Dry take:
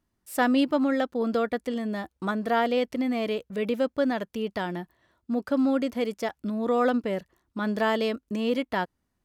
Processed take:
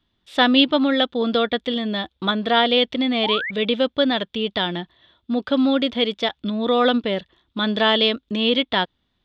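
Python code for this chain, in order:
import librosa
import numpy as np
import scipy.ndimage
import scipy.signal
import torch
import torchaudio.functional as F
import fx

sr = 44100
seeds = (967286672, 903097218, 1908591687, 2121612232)

y = fx.lowpass_res(x, sr, hz=3500.0, q=9.4)
y = fx.spec_paint(y, sr, seeds[0], shape='rise', start_s=3.23, length_s=0.28, low_hz=750.0, high_hz=2300.0, level_db=-32.0)
y = fx.wow_flutter(y, sr, seeds[1], rate_hz=2.1, depth_cents=17.0)
y = y * librosa.db_to_amplitude(5.0)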